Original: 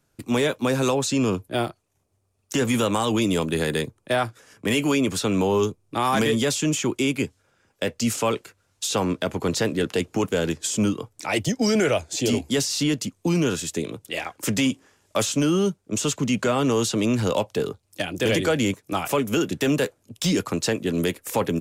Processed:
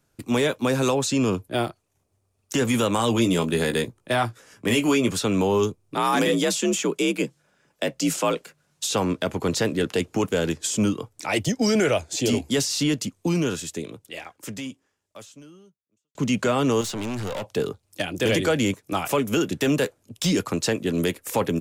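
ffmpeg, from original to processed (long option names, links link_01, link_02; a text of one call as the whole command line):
ffmpeg -i in.wav -filter_complex "[0:a]asettb=1/sr,asplit=3[link_01][link_02][link_03];[link_01]atrim=end=2.974[link_04];[link_02]atrim=start=2.97:end=5.11,asetpts=PTS-STARTPTS,afade=type=in:duration=0.004:curve=qsin,afade=type=out:start_time=2.136:duration=0.004:curve=qsin,asplit=2[link_05][link_06];[link_06]adelay=17,volume=-7dB[link_07];[link_05][link_07]amix=inputs=2:normalize=0,atrim=end_sample=94374[link_08];[link_03]atrim=start=5.106[link_09];[link_04][link_08]acrossfade=duration=0.004:curve1=hsin:curve2=qsin[link_10];[link_10][link_09]acrossfade=duration=0.004:curve1=qsin:curve2=hsin,asettb=1/sr,asplit=3[link_11][link_12][link_13];[link_11]atrim=end=5.964[link_14];[link_12]atrim=start=5.96:end=8.87,asetpts=PTS-STARTPTS,afade=type=in:duration=0.004:curve=qsin,afade=type=out:start_time=2.906:duration=0.004:curve=qsin,afreqshift=53[link_15];[link_13]atrim=start=8.866[link_16];[link_14][link_15]acrossfade=duration=0.004:curve1=hsin:curve2=qsin[link_17];[link_17][link_16]acrossfade=duration=0.004:curve1=qsin:curve2=hsin,asettb=1/sr,asplit=3[link_18][link_19][link_20];[link_18]atrim=end=16.814[link_21];[link_19]atrim=start=16.81:end=17.45,asetpts=PTS-STARTPTS,afade=type=in:duration=0.004:curve=qsin,afade=type=out:start_time=0.636:duration=0.004:curve=qsin,aeval=exprs='(tanh(22.4*val(0)+0.3)-tanh(0.3))/22.4':channel_layout=same[link_22];[link_20]atrim=start=17.446[link_23];[link_21][link_22]acrossfade=duration=0.004:curve1=hsin:curve2=qsin[link_24];[link_24][link_23]acrossfade=duration=0.004:curve1=qsin:curve2=hsin,asplit=2[link_25][link_26];[link_25]atrim=end=16.15,asetpts=PTS-STARTPTS,afade=type=out:start_time=13.12:duration=3.03:curve=qua[link_27];[link_26]atrim=start=16.15,asetpts=PTS-STARTPTS,afade=type=in:duration=0.004:curve=hsin[link_28];[link_27][link_28]concat=n=2:v=0:a=1" out.wav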